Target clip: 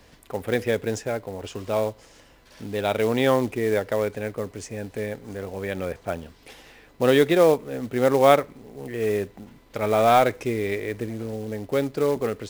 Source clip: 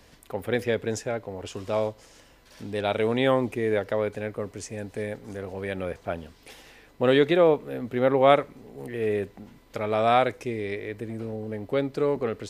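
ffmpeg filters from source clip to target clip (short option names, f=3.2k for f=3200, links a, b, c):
-filter_complex "[0:a]asettb=1/sr,asplit=3[a][b][c];[a]atrim=end=9.824[d];[b]atrim=start=9.82:end=11.09,asetpts=PTS-STARTPTS,afade=t=in:d=0.004:c=qsin,afade=t=out:st=1.266:d=0.004:c=qsin,aeval=exprs='0.473*(cos(1*acos(clip(val(0)/0.473,-1,1)))-cos(1*PI/2))+0.0376*(cos(5*acos(clip(val(0)/0.473,-1,1)))-cos(5*PI/2))':c=same[e];[c]atrim=start=11.086[f];[d][e]acrossfade=d=0.004:c1=hsin:c2=qsin[g];[g][f]acrossfade=d=0.004:c1=qsin:c2=hsin,highshelf=f=5.1k:g=-3.5,acrusher=bits=5:mode=log:mix=0:aa=0.000001,volume=2dB"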